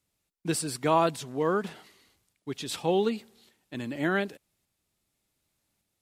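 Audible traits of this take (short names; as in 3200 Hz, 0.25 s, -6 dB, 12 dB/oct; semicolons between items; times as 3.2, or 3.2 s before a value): tremolo saw up 0.86 Hz, depth 30%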